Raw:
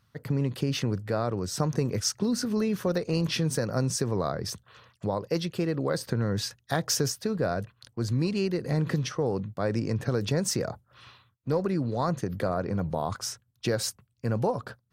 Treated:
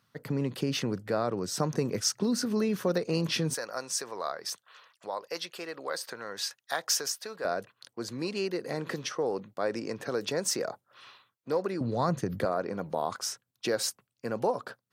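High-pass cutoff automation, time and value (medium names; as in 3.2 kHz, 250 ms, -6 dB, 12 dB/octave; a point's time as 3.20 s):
180 Hz
from 3.54 s 750 Hz
from 7.45 s 350 Hz
from 11.81 s 110 Hz
from 12.45 s 290 Hz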